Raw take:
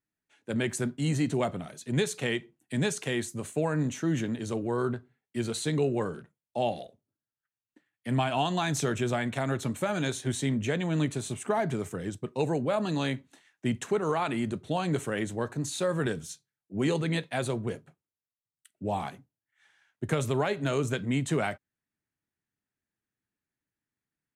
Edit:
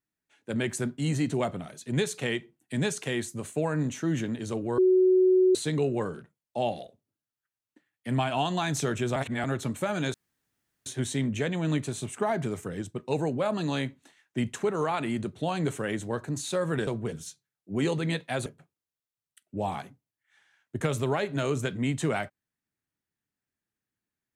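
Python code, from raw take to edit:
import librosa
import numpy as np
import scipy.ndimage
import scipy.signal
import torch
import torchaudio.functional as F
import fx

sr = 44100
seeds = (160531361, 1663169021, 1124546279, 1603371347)

y = fx.edit(x, sr, fx.bleep(start_s=4.78, length_s=0.77, hz=371.0, db=-17.0),
    fx.reverse_span(start_s=9.16, length_s=0.28),
    fx.insert_room_tone(at_s=10.14, length_s=0.72),
    fx.move(start_s=17.49, length_s=0.25, to_s=16.15), tone=tone)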